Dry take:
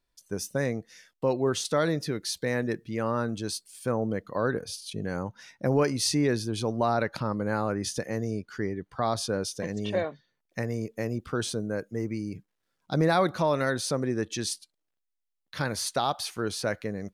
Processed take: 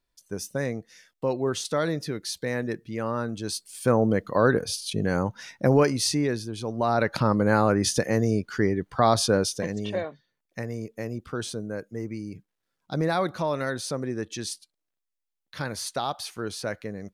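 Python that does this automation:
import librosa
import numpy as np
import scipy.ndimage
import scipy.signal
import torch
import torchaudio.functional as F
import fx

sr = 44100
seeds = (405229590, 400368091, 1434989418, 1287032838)

y = fx.gain(x, sr, db=fx.line((3.38, -0.5), (3.81, 7.0), (5.53, 7.0), (6.58, -4.0), (7.22, 7.5), (9.35, 7.5), (10.02, -2.0)))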